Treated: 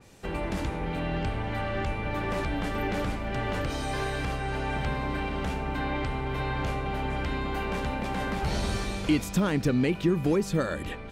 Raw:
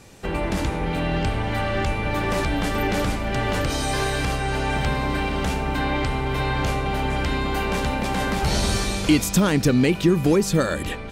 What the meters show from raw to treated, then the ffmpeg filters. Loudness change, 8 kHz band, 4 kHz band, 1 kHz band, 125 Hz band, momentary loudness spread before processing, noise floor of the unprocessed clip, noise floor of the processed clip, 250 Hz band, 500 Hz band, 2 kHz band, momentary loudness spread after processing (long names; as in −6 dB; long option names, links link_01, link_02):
−7.0 dB, −13.0 dB, −9.5 dB, −6.5 dB, −6.5 dB, 6 LU, −29 dBFS, −37 dBFS, −6.5 dB, −6.5 dB, −7.0 dB, 6 LU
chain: -af "adynamicequalizer=threshold=0.00794:dfrequency=3700:dqfactor=0.7:tfrequency=3700:tqfactor=0.7:attack=5:release=100:ratio=0.375:range=3.5:mode=cutabove:tftype=highshelf,volume=-6.5dB"